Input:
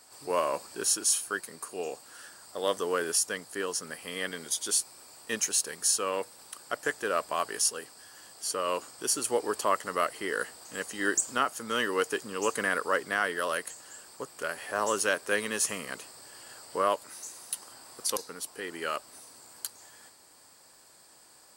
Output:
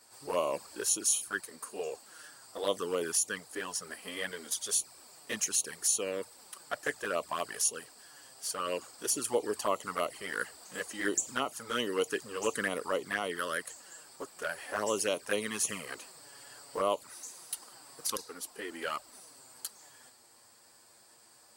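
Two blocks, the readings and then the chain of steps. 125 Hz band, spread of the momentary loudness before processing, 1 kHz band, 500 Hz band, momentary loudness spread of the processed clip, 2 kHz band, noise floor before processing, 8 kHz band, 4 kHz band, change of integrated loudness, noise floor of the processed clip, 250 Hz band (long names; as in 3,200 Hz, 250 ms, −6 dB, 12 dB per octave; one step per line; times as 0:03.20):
−1.5 dB, 16 LU, −5.5 dB, −2.5 dB, 17 LU, −5.0 dB, −57 dBFS, −2.5 dB, −3.5 dB, −3.5 dB, −60 dBFS, −2.0 dB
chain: flanger swept by the level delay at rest 9.6 ms, full sweep at −24 dBFS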